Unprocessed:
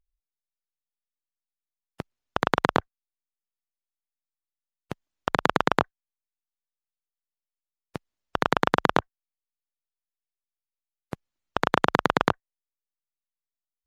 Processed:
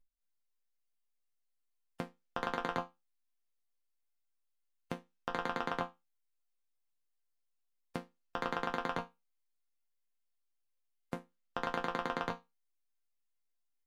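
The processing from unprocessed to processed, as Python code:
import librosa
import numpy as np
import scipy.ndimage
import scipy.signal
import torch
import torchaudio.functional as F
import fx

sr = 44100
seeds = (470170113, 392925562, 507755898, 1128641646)

y = fx.level_steps(x, sr, step_db=19)
y = fx.resonator_bank(y, sr, root=53, chord='sus4', decay_s=0.21)
y = y * librosa.db_to_amplitude(17.5)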